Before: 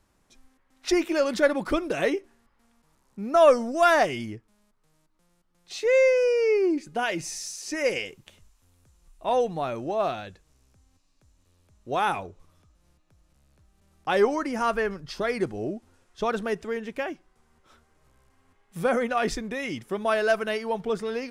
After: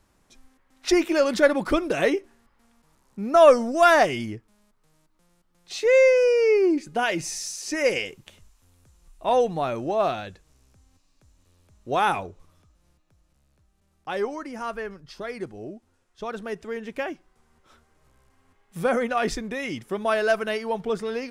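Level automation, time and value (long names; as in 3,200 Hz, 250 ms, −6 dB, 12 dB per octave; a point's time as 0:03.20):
0:12.18 +3 dB
0:14.28 −6.5 dB
0:16.25 −6.5 dB
0:17.00 +1 dB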